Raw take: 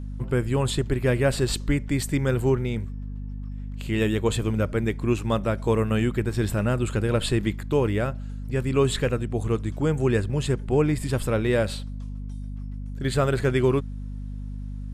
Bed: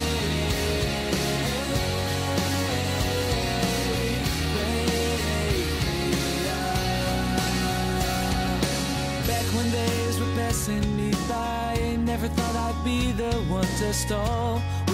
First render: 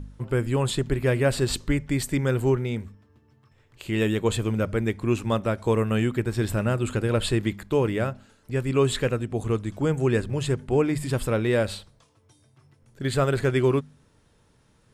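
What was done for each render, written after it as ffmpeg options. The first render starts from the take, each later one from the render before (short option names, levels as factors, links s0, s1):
-af "bandreject=f=50:t=h:w=4,bandreject=f=100:t=h:w=4,bandreject=f=150:t=h:w=4,bandreject=f=200:t=h:w=4,bandreject=f=250:t=h:w=4"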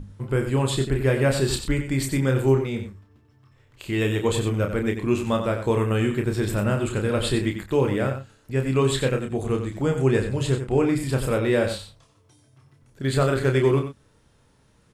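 -filter_complex "[0:a]asplit=2[s0][s1];[s1]adelay=30,volume=0.531[s2];[s0][s2]amix=inputs=2:normalize=0,asplit=2[s3][s4];[s4]aecho=0:1:92:0.355[s5];[s3][s5]amix=inputs=2:normalize=0"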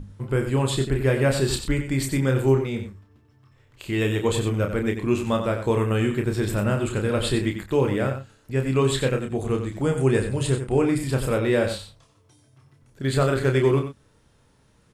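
-filter_complex "[0:a]asettb=1/sr,asplit=3[s0][s1][s2];[s0]atrim=end=9.814[s3];[s1]atrim=start=9.81:end=10.98,asetpts=PTS-STARTPTS,afade=t=in:d=0.004:c=qsin,afade=t=out:st=1.166:d=0.004:c=qsin,equalizer=f=9000:w=7.4:g=14[s4];[s2]atrim=start=10.976[s5];[s3][s4]acrossfade=d=0.004:c1=hsin:c2=qsin[s6];[s6][s5]acrossfade=d=0.004:c1=qsin:c2=hsin"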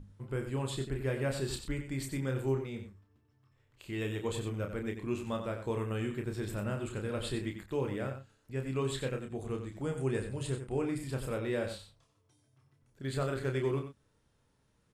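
-af "volume=0.237"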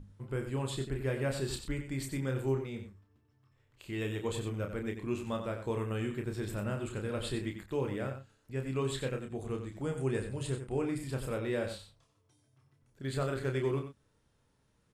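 -af anull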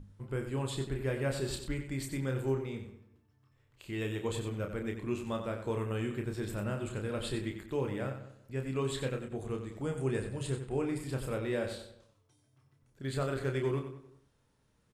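-filter_complex "[0:a]asplit=2[s0][s1];[s1]adelay=190,lowpass=f=2000:p=1,volume=0.178,asplit=2[s2][s3];[s3]adelay=190,lowpass=f=2000:p=1,volume=0.23[s4];[s0][s2][s4]amix=inputs=3:normalize=0"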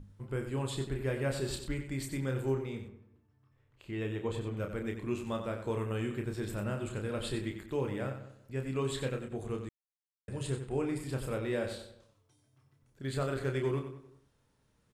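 -filter_complex "[0:a]asettb=1/sr,asplit=3[s0][s1][s2];[s0]atrim=end=2.884[s3];[s1]atrim=start=2.88:end=4.57,asetpts=PTS-STARTPTS,afade=t=in:d=0.004:c=qsin,afade=t=out:st=1.686:d=0.004:c=qsin,highshelf=f=3900:g=-12[s4];[s2]atrim=start=4.566[s5];[s3][s4]acrossfade=d=0.004:c1=hsin:c2=qsin[s6];[s6][s5]acrossfade=d=0.004:c1=qsin:c2=hsin,asplit=3[s7][s8][s9];[s7]atrim=end=9.69,asetpts=PTS-STARTPTS,afade=t=out:st=9.686:d=0.004:c=hsin[s10];[s8]atrim=start=9.69:end=10.28,asetpts=PTS-STARTPTS,volume=0[s11];[s9]atrim=start=10.28,asetpts=PTS-STARTPTS,afade=t=in:d=0.004:c=hsin[s12];[s10][s11][s12]concat=n=3:v=0:a=1"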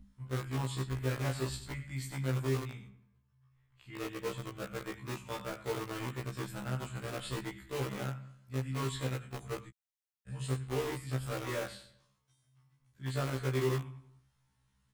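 -filter_complex "[0:a]acrossover=split=260|700|4100[s0][s1][s2][s3];[s1]acrusher=bits=5:mix=0:aa=0.000001[s4];[s0][s4][s2][s3]amix=inputs=4:normalize=0,afftfilt=real='re*1.73*eq(mod(b,3),0)':imag='im*1.73*eq(mod(b,3),0)':win_size=2048:overlap=0.75"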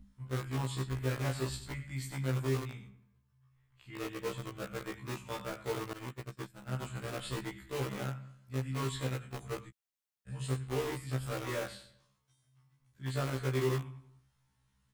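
-filter_complex "[0:a]asettb=1/sr,asplit=3[s0][s1][s2];[s0]atrim=end=5.934[s3];[s1]atrim=start=5.93:end=6.79,asetpts=PTS-STARTPTS,afade=t=in:d=0.004:c=qsin,afade=t=out:st=0.856:d=0.004:c=qsin,agate=range=0.0224:threshold=0.02:ratio=3:release=100:detection=peak[s4];[s2]atrim=start=6.786[s5];[s3][s4]acrossfade=d=0.004:c1=hsin:c2=qsin[s6];[s6][s5]acrossfade=d=0.004:c1=qsin:c2=hsin"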